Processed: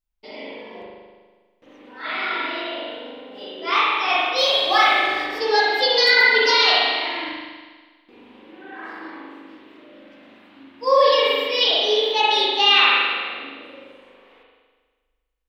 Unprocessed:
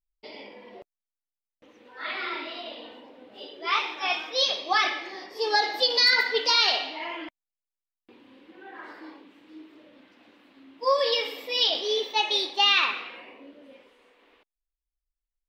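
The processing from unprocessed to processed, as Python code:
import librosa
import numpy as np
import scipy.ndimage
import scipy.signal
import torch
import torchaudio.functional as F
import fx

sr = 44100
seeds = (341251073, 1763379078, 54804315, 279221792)

y = fx.law_mismatch(x, sr, coded='mu', at=(4.37, 5.38), fade=0.02)
y = fx.rev_spring(y, sr, rt60_s=1.5, pass_ms=(40,), chirp_ms=35, drr_db=-6.0)
y = y * 10.0 ** (1.5 / 20.0)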